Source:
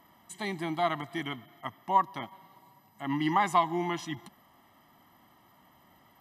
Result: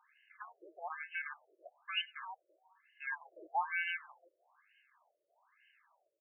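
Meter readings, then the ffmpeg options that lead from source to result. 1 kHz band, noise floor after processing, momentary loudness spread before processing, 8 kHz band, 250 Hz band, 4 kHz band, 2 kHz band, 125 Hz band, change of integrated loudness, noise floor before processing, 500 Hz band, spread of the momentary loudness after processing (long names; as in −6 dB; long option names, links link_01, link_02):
−13.5 dB, −83 dBFS, 16 LU, below −30 dB, −34.5 dB, −2.5 dB, −1.0 dB, below −40 dB, −9.0 dB, −62 dBFS, −19.0 dB, 18 LU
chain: -filter_complex "[0:a]asplit=2[link_01][link_02];[link_02]adelay=330,highpass=300,lowpass=3400,asoftclip=type=hard:threshold=-21dB,volume=-13dB[link_03];[link_01][link_03]amix=inputs=2:normalize=0,aeval=exprs='val(0)*sin(2*PI*1900*n/s)':channel_layout=same,afftfilt=real='re*between(b*sr/1024,440*pow(2200/440,0.5+0.5*sin(2*PI*1.1*pts/sr))/1.41,440*pow(2200/440,0.5+0.5*sin(2*PI*1.1*pts/sr))*1.41)':imag='im*between(b*sr/1024,440*pow(2200/440,0.5+0.5*sin(2*PI*1.1*pts/sr))/1.41,440*pow(2200/440,0.5+0.5*sin(2*PI*1.1*pts/sr))*1.41)':win_size=1024:overlap=0.75,volume=-2dB"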